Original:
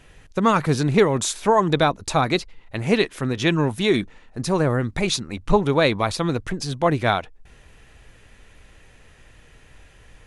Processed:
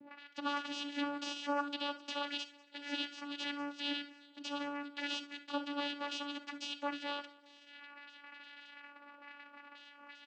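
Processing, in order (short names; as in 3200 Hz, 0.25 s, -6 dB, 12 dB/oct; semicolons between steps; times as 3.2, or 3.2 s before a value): gate -48 dBFS, range -8 dB; high shelf 3600 Hz +11.5 dB; in parallel at -1 dB: compressor, threshold -41 dBFS, peak gain reduction 27 dB; on the sum: auto-wah 240–4600 Hz, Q 2.7, up, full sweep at -36.5 dBFS; soft clip -33.5 dBFS, distortion -2 dB; vocoder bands 8, saw 287 Hz; air absorption 170 m; on a send: feedback echo 0.195 s, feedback 51%, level -21.5 dB; on the sum: non-linear reverb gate 90 ms flat, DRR 10 dB; gain +3 dB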